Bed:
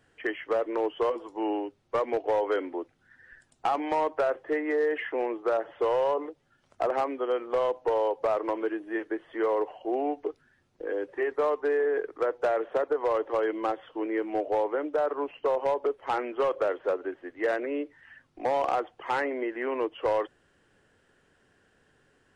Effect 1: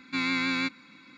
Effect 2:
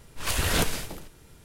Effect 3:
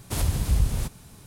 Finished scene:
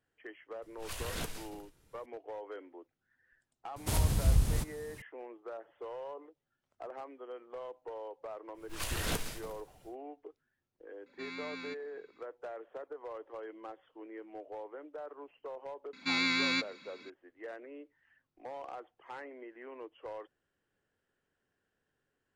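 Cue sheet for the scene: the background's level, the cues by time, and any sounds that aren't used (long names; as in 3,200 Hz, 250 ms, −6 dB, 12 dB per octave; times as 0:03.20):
bed −17.5 dB
0:00.62: mix in 2 −14.5 dB
0:03.76: mix in 3 −4 dB
0:08.53: mix in 2 −10 dB, fades 0.10 s + log-companded quantiser 6 bits
0:11.06: mix in 1 −16 dB
0:15.93: mix in 1 −5 dB + parametric band 5,400 Hz +7.5 dB 2 octaves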